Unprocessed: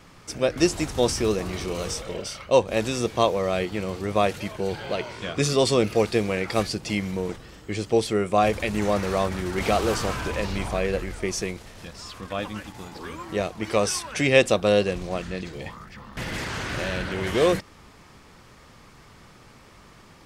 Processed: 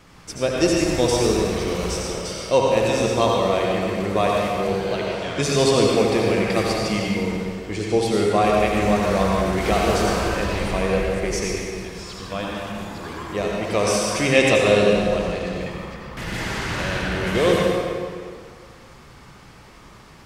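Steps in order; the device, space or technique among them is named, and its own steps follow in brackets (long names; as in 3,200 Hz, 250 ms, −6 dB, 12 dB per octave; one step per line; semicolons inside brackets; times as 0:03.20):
stairwell (convolution reverb RT60 2.2 s, pre-delay 69 ms, DRR −2.5 dB)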